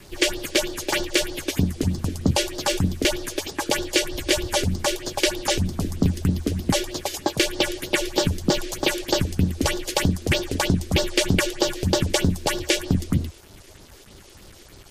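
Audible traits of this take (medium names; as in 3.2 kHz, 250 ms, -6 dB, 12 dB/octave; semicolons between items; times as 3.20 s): phasing stages 4, 3.2 Hz, lowest notch 140–2400 Hz; a quantiser's noise floor 8-bit, dither none; MP3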